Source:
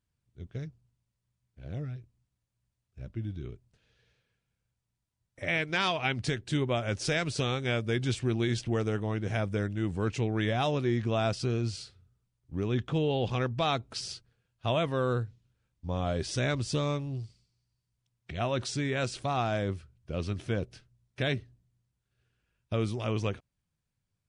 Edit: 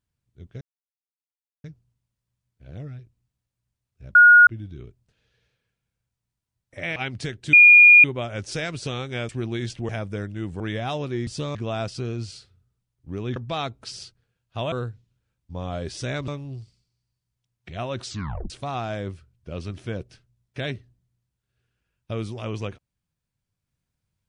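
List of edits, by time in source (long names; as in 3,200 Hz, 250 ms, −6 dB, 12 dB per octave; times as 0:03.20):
0:00.61: splice in silence 1.03 s
0:03.12: insert tone 1,440 Hz −7.5 dBFS 0.32 s
0:05.61–0:06.00: remove
0:06.57: insert tone 2,430 Hz −7 dBFS 0.51 s
0:07.82–0:08.17: remove
0:08.77–0:09.30: remove
0:10.01–0:10.33: remove
0:12.81–0:13.45: remove
0:14.81–0:15.06: remove
0:16.62–0:16.90: move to 0:11.00
0:18.68: tape stop 0.44 s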